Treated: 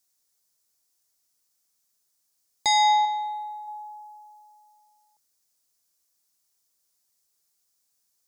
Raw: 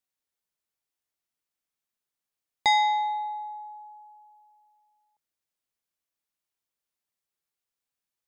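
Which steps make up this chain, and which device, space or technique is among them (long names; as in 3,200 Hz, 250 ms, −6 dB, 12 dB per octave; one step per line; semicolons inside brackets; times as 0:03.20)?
over-bright horn tweeter (high shelf with overshoot 4,000 Hz +9.5 dB, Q 1.5; brickwall limiter −20 dBFS, peak gain reduction 9 dB)
0:03.05–0:03.68: parametric band 810 Hz −4 dB
level +6 dB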